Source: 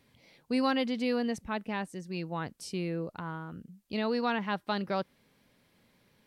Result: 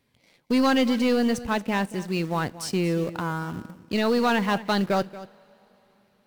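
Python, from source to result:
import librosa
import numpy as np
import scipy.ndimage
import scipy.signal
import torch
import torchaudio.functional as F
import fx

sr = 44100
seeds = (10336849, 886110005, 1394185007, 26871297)

p1 = fx.leveller(x, sr, passes=2)
p2 = fx.quant_dither(p1, sr, seeds[0], bits=6, dither='none')
p3 = p1 + F.gain(torch.from_numpy(p2), -9.0).numpy()
p4 = p3 + 10.0 ** (-16.0 / 20.0) * np.pad(p3, (int(231 * sr / 1000.0), 0))[:len(p3)]
y = fx.rev_double_slope(p4, sr, seeds[1], early_s=0.24, late_s=4.2, knee_db=-20, drr_db=18.0)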